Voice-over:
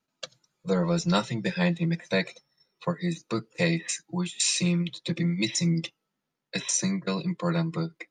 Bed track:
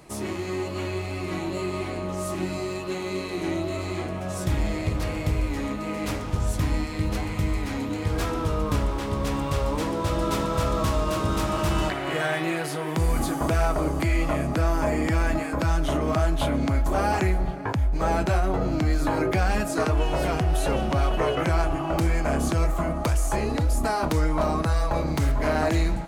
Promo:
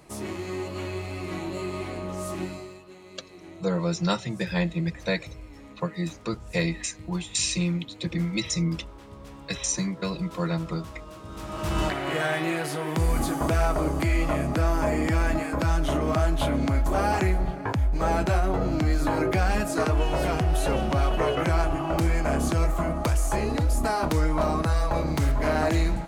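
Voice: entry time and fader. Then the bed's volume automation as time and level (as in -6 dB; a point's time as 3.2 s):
2.95 s, -1.0 dB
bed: 2.42 s -3 dB
2.86 s -17.5 dB
11.23 s -17.5 dB
11.81 s -0.5 dB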